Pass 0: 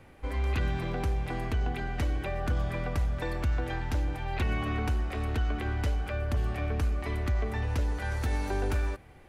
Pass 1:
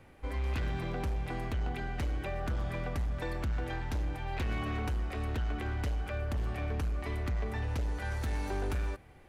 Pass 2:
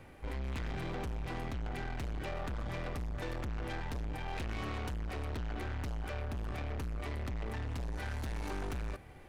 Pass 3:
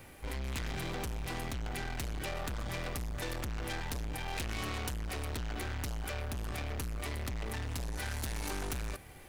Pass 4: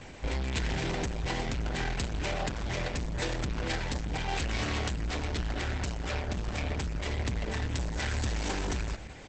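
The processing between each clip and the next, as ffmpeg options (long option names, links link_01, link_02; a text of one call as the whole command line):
ffmpeg -i in.wav -af "asoftclip=type=hard:threshold=-25.5dB,volume=-3dB" out.wav
ffmpeg -i in.wav -af "aeval=exprs='(tanh(100*val(0)+0.35)-tanh(0.35))/100':channel_layout=same,volume=4dB" out.wav
ffmpeg -i in.wav -af "crystalizer=i=3.5:c=0" out.wav
ffmpeg -i in.wav -filter_complex "[0:a]bandreject=frequency=1200:width=7.3,asplit=2[link_01][link_02];[link_02]adelay=163.3,volume=-17dB,highshelf=frequency=4000:gain=-3.67[link_03];[link_01][link_03]amix=inputs=2:normalize=0,volume=7.5dB" -ar 48000 -c:a libopus -b:a 10k out.opus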